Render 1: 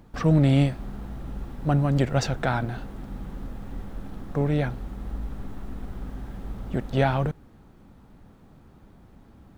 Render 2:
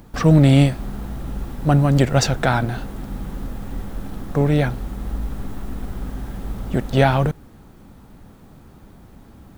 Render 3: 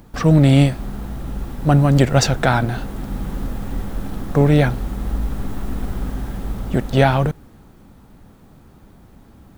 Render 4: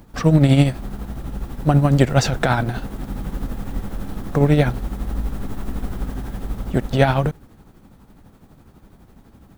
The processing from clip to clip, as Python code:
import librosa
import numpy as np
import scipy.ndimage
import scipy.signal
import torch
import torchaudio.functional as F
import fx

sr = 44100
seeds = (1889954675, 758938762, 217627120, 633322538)

y1 = fx.high_shelf(x, sr, hz=6100.0, db=9.0)
y1 = y1 * 10.0 ** (6.5 / 20.0)
y2 = fx.rider(y1, sr, range_db=3, speed_s=2.0)
y2 = y2 * 10.0 ** (1.5 / 20.0)
y3 = fx.tremolo_shape(y2, sr, shape='triangle', hz=12.0, depth_pct=60)
y3 = y3 * 10.0 ** (1.0 / 20.0)